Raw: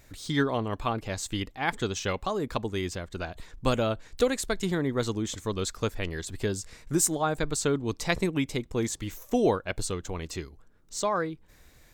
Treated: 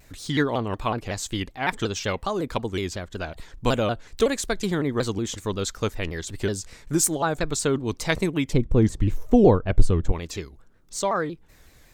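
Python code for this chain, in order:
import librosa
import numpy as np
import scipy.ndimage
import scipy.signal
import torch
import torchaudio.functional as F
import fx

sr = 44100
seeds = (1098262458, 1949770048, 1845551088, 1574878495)

y = fx.tilt_eq(x, sr, slope=-3.5, at=(8.53, 10.12))
y = fx.vibrato_shape(y, sr, shape='saw_down', rate_hz=5.4, depth_cents=160.0)
y = F.gain(torch.from_numpy(y), 3.0).numpy()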